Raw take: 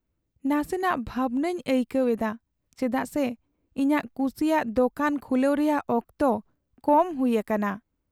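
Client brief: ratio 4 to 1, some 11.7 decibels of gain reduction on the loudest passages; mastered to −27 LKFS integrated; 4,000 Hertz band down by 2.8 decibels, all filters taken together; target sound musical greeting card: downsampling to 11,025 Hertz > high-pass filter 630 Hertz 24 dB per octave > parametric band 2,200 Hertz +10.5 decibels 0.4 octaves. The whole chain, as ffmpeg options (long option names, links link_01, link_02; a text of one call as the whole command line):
ffmpeg -i in.wav -af "equalizer=frequency=4000:width_type=o:gain=-6.5,acompressor=threshold=-30dB:ratio=4,aresample=11025,aresample=44100,highpass=frequency=630:width=0.5412,highpass=frequency=630:width=1.3066,equalizer=frequency=2200:width_type=o:width=0.4:gain=10.5,volume=12dB" out.wav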